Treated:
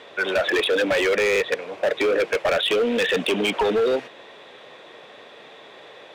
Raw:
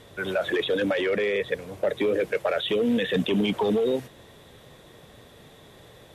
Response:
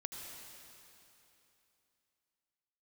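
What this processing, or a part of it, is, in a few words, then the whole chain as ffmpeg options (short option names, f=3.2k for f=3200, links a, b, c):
megaphone: -af "highpass=460,lowpass=3.7k,equalizer=f=2.5k:t=o:w=0.24:g=5,asoftclip=type=hard:threshold=-26dB,volume=9dB"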